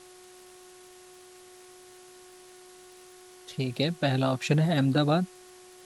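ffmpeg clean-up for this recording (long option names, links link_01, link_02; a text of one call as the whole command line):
ffmpeg -i in.wav -af "adeclick=threshold=4,bandreject=frequency=365.4:width_type=h:width=4,bandreject=frequency=730.8:width_type=h:width=4,bandreject=frequency=1096.2:width_type=h:width=4,bandreject=frequency=1461.6:width_type=h:width=4,bandreject=frequency=1827:width_type=h:width=4,afftdn=noise_reduction=21:noise_floor=-51" out.wav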